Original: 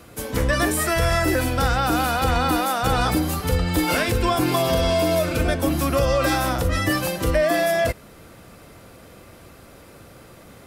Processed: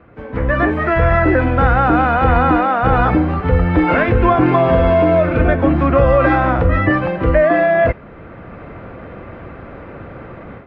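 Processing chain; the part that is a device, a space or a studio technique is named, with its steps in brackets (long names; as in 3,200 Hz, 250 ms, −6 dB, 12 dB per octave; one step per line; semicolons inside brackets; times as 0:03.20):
action camera in a waterproof case (low-pass filter 2,100 Hz 24 dB per octave; automatic gain control gain up to 13 dB; AAC 48 kbit/s 22,050 Hz)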